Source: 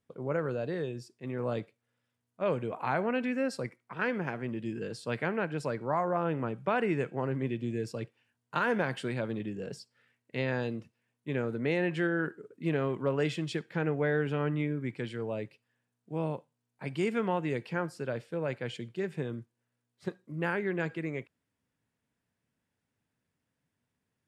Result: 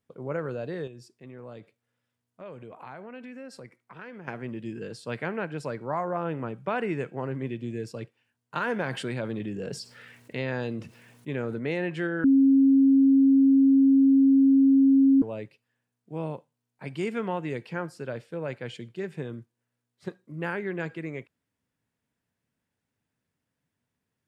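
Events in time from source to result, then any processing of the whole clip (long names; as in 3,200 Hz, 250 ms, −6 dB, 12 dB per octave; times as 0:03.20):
0:00.87–0:04.28: downward compressor 2.5 to 1, threshold −44 dBFS
0:08.82–0:11.59: envelope flattener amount 50%
0:12.24–0:15.22: beep over 271 Hz −15 dBFS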